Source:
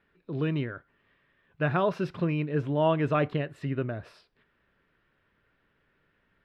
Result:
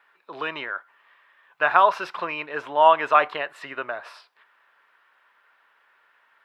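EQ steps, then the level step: resonant high-pass 930 Hz, resonance Q 2.2; +8.5 dB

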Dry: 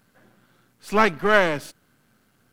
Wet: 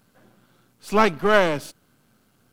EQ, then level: bell 1800 Hz -5.5 dB 0.65 oct; +1.5 dB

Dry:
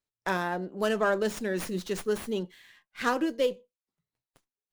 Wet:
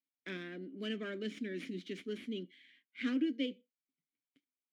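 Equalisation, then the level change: vowel filter i; low shelf 75 Hz -9.5 dB; +5.5 dB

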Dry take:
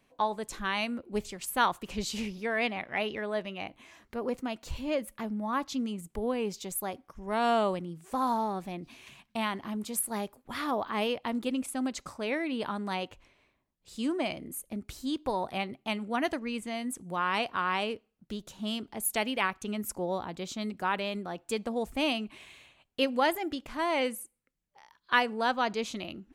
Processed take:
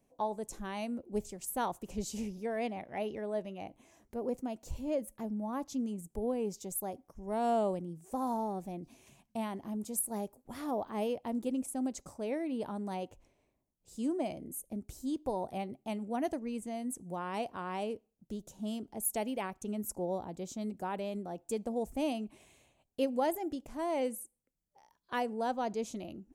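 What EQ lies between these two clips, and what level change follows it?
band shelf 2200 Hz -12 dB 2.4 oct; -2.5 dB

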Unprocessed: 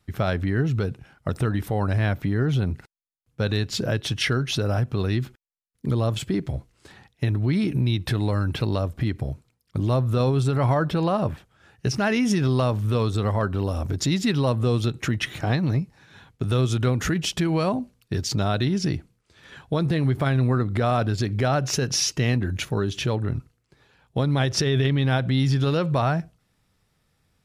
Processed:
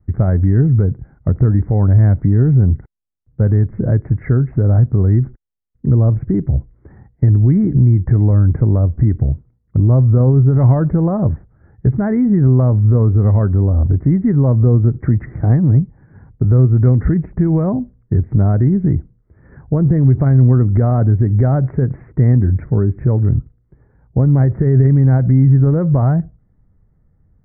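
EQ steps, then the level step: steep low-pass 2100 Hz 96 dB/oct; tilt shelf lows +10 dB, about 810 Hz; low shelf 81 Hz +12 dB; -1.0 dB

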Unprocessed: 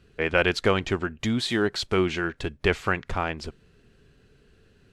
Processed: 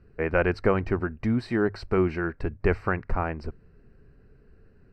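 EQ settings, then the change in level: running mean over 13 samples; low shelf 70 Hz +9 dB; notches 50/100 Hz; 0.0 dB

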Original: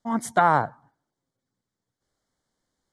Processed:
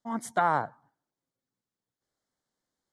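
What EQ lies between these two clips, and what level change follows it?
low shelf 91 Hz -10 dB; -6.0 dB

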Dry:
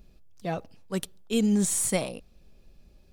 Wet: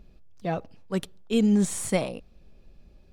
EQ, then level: high shelf 5400 Hz -12 dB; +2.5 dB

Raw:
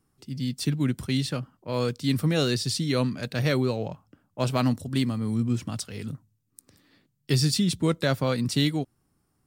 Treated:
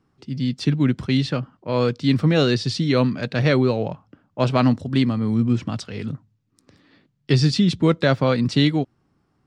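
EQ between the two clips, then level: air absorption 150 m; low shelf 61 Hz -10 dB; +7.5 dB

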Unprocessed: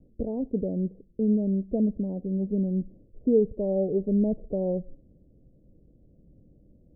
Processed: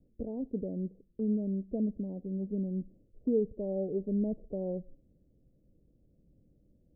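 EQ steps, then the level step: dynamic EQ 280 Hz, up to +3 dB, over -35 dBFS, Q 1.1; -9.0 dB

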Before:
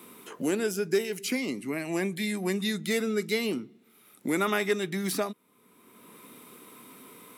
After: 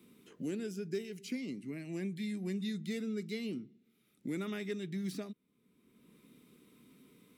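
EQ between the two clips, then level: passive tone stack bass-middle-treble 10-0-1; bell 98 Hz -9 dB 0.45 oct; bell 12000 Hz -12.5 dB 1.2 oct; +11.0 dB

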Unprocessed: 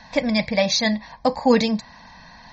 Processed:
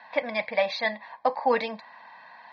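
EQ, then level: BPF 690–6400 Hz; air absorption 430 m; +2.0 dB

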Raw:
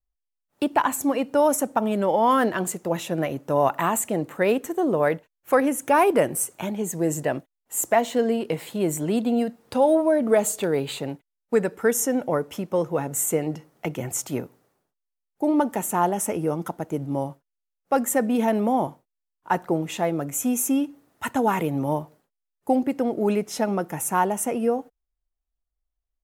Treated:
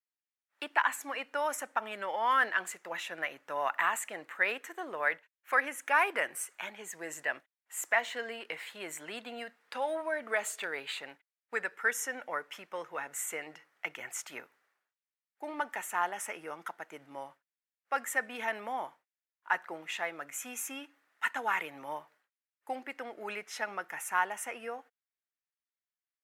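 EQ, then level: resonant high-pass 1800 Hz, resonance Q 2; tilt -4 dB/oct; 0.0 dB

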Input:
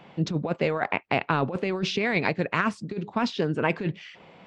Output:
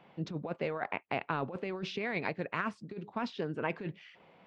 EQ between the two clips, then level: low shelf 280 Hz -4.5 dB; high shelf 4200 Hz -8.5 dB; bell 7100 Hz -2 dB; -8.0 dB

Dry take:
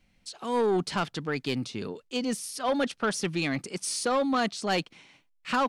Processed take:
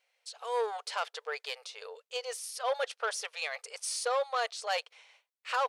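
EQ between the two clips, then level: brick-wall FIR high-pass 430 Hz; -3.5 dB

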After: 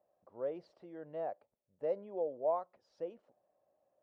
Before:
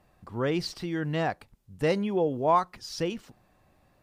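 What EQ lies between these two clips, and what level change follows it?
band-pass 580 Hz, Q 4.9; -3.0 dB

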